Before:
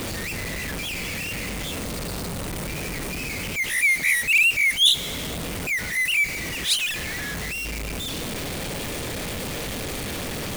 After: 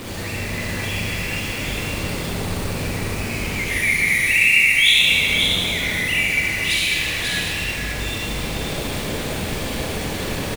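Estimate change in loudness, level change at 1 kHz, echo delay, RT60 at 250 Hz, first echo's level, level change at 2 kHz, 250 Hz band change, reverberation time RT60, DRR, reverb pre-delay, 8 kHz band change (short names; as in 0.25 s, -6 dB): +4.5 dB, +5.0 dB, 0.541 s, 2.7 s, -3.5 dB, +5.0 dB, +5.0 dB, 2.4 s, -7.5 dB, 33 ms, +1.5 dB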